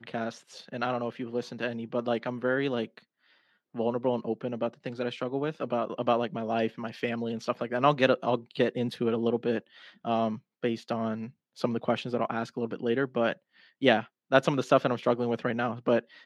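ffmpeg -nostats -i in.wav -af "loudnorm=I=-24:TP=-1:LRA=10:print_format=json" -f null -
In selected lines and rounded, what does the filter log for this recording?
"input_i" : "-29.1",
"input_tp" : "-5.7",
"input_lra" : "4.9",
"input_thresh" : "-39.5",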